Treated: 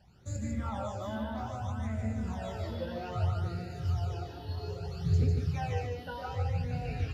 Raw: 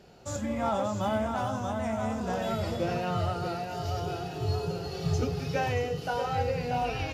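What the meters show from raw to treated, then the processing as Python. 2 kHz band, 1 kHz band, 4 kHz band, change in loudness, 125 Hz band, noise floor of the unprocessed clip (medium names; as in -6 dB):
-8.5 dB, -9.0 dB, -8.5 dB, -3.5 dB, +1.5 dB, -38 dBFS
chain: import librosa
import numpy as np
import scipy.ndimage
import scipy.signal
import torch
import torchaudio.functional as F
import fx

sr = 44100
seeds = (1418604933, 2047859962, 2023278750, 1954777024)

y = fx.peak_eq(x, sr, hz=77.0, db=11.0, octaves=1.5)
y = fx.phaser_stages(y, sr, stages=12, low_hz=120.0, high_hz=1100.0, hz=0.62, feedback_pct=25)
y = y + 10.0 ** (-4.0 / 20.0) * np.pad(y, (int(149 * sr / 1000.0), 0))[:len(y)]
y = fx.doppler_dist(y, sr, depth_ms=0.12)
y = F.gain(torch.from_numpy(y), -7.0).numpy()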